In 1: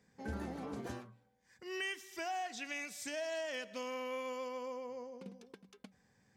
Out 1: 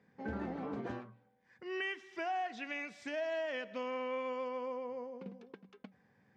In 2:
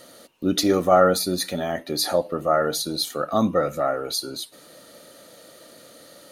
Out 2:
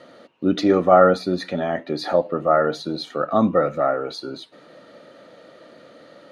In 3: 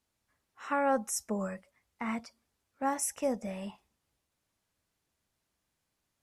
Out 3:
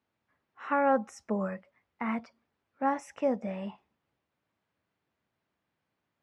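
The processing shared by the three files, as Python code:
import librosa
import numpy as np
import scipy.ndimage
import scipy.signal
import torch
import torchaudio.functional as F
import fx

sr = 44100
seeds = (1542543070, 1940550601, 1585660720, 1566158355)

y = fx.bandpass_edges(x, sr, low_hz=110.0, high_hz=2500.0)
y = y * librosa.db_to_amplitude(3.0)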